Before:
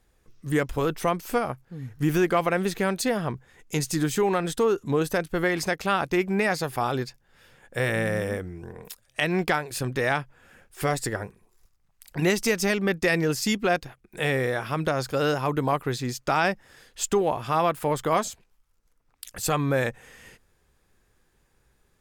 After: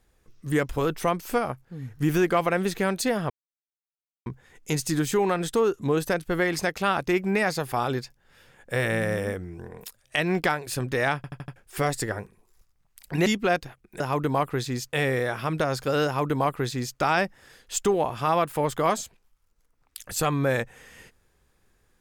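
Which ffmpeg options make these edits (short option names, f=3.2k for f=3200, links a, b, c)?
-filter_complex "[0:a]asplit=10[a][b][c][d][e][f][g][h][i][j];[a]atrim=end=3.3,asetpts=PTS-STARTPTS,afade=t=out:st=3.296:d=0.004:c=hsin,apad=pad_dur=0.96[k];[b]atrim=start=3.3:end=10.282,asetpts=PTS-STARTPTS,afade=t=in:d=0.004:c=hsin[l];[c]atrim=start=10.198:end=10.282[m];[d]atrim=start=10.198:end=10.282[n];[e]atrim=start=10.198:end=10.282[o];[f]atrim=start=10.198:end=10.282[p];[g]atrim=start=10.598:end=12.302[q];[h]atrim=start=13.458:end=14.202[r];[i]atrim=start=15.328:end=16.262[s];[j]atrim=start=14.198[t];[k][l]concat=n=2:v=0:a=1[u];[u][m]acrossfade=d=0.004:c1=hsin:c2=hsin[v];[v][n]acrossfade=d=0.004:c1=hsin:c2=hsin[w];[w][o]acrossfade=d=0.004:c1=hsin:c2=hsin[x];[x][p]acrossfade=d=0.004:c1=hsin:c2=hsin[y];[y][q]acrossfade=d=0.004:c1=hsin:c2=hsin[z];[z][r]acrossfade=d=0.004:c1=hsin:c2=hsin[aa];[aa][s]acrossfade=d=0.004:c1=hsin:c2=hsin[ab];[ab][t]acrossfade=d=0.004:c1=hsin:c2=hsin"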